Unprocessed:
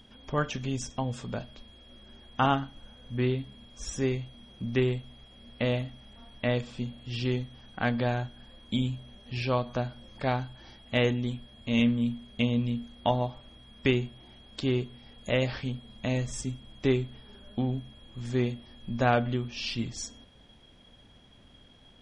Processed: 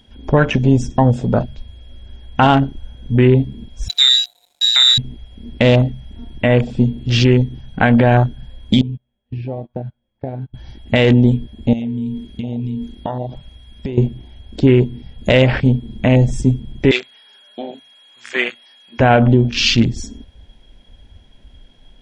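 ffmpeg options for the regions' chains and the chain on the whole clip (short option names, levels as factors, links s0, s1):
-filter_complex "[0:a]asettb=1/sr,asplit=3[s0][s1][s2];[s0]atrim=end=3.884[s3];[s1]atrim=start=3.88:end=4.98,asetpts=PTS-STARTPTS,afade=t=in:d=0.004:c=qsin,afade=t=out:st=1.096:d=0.004:c=qsin,lowpass=f=3400:t=q:w=0.5098,lowpass=f=3400:t=q:w=0.6013,lowpass=f=3400:t=q:w=0.9,lowpass=f=3400:t=q:w=2.563,afreqshift=-4000,aeval=exprs='sgn(val(0))*max(abs(val(0))-0.00335,0)':c=same[s4];[s2]atrim=start=4.976[s5];[s3][s4]acrossfade=d=0.004:c1=hsin:c2=qsin[s6];[s6][s5]acrossfade=d=0.004:c1=qsin:c2=hsin,asettb=1/sr,asplit=3[s7][s8][s9];[s7]atrim=end=8.814[s10];[s8]atrim=start=8.81:end=10.54,asetpts=PTS-STARTPTS,afade=t=in:d=0.004:c=qsin,afade=t=out:st=1.726:d=0.004:c=qsin,agate=range=0.0447:threshold=0.0141:ratio=16:release=100:detection=peak,acompressor=threshold=0.00891:ratio=6:attack=3.2:release=140:knee=1:detection=peak,lowpass=2700[s11];[s9]atrim=start=10.536[s12];[s10][s11]acrossfade=d=0.004:c1=hsin:c2=qsin[s13];[s13][s12]acrossfade=d=0.004:c1=qsin:c2=hsin,asettb=1/sr,asplit=3[s14][s15][s16];[s14]atrim=end=11.734[s17];[s15]atrim=start=11.73:end=13.98,asetpts=PTS-STARTPTS,afade=t=in:d=0.004:c=qsin,afade=t=out:st=2.246:d=0.004:c=qsin,tiltshelf=f=1300:g=-3.5,acompressor=threshold=0.0126:ratio=10:attack=3.2:release=140:knee=1:detection=peak[s18];[s16]atrim=start=13.976[s19];[s17][s18]acrossfade=d=0.004:c1=hsin:c2=qsin[s20];[s20][s19]acrossfade=d=0.004:c1=qsin:c2=hsin,asettb=1/sr,asplit=3[s21][s22][s23];[s21]atrim=end=16.914[s24];[s22]atrim=start=16.91:end=19,asetpts=PTS-STARTPTS,afade=t=in:d=0.004:c=qsin,afade=t=out:st=2.086:d=0.004:c=qsin,highpass=1200,acontrast=38[s25];[s23]atrim=start=18.996[s26];[s24][s25]acrossfade=d=0.004:c1=hsin:c2=qsin[s27];[s27][s26]acrossfade=d=0.004:c1=qsin:c2=hsin,bandreject=f=1200:w=5.5,afwtdn=0.01,alimiter=level_in=11.2:limit=0.891:release=50:level=0:latency=1,volume=0.891"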